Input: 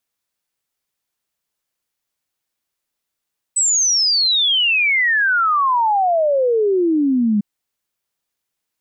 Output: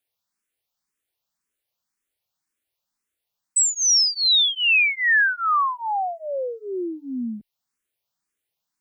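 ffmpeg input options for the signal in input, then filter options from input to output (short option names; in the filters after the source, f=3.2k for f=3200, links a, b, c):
-f lavfi -i "aevalsrc='0.224*clip(min(t,3.85-t)/0.01,0,1)*sin(2*PI*8100*3.85/log(200/8100)*(exp(log(200/8100)*t/3.85)-1))':d=3.85:s=44100"
-filter_complex "[0:a]acrossover=split=1200[a][b];[a]acompressor=threshold=-26dB:ratio=6[c];[c][b]amix=inputs=2:normalize=0,asplit=2[d][e];[e]afreqshift=1.9[f];[d][f]amix=inputs=2:normalize=1"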